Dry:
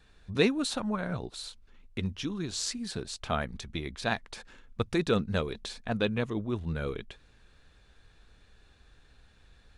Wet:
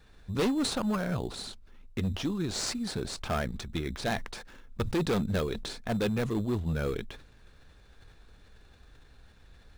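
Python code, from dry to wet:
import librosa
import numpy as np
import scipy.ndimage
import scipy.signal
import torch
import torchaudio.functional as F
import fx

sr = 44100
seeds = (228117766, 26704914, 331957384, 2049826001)

p1 = fx.sample_hold(x, sr, seeds[0], rate_hz=3800.0, jitter_pct=0)
p2 = x + (p1 * librosa.db_to_amplitude(-7.5))
p3 = np.clip(p2, -10.0 ** (-24.0 / 20.0), 10.0 ** (-24.0 / 20.0))
y = fx.sustainer(p3, sr, db_per_s=85.0)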